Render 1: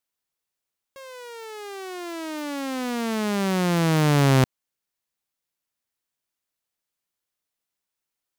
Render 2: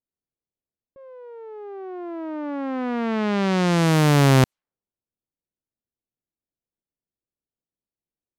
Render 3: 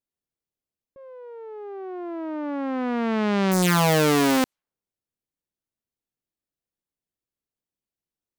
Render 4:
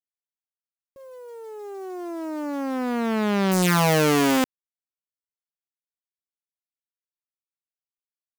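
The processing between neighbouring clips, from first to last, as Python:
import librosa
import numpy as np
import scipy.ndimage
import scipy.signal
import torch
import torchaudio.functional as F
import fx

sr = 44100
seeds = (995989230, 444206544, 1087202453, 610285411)

y1 = fx.env_lowpass(x, sr, base_hz=410.0, full_db=-17.0)
y1 = y1 * 10.0 ** (2.5 / 20.0)
y2 = (np.mod(10.0 ** (15.0 / 20.0) * y1 + 1.0, 2.0) - 1.0) / 10.0 ** (15.0 / 20.0)
y3 = fx.quant_companded(y2, sr, bits=6)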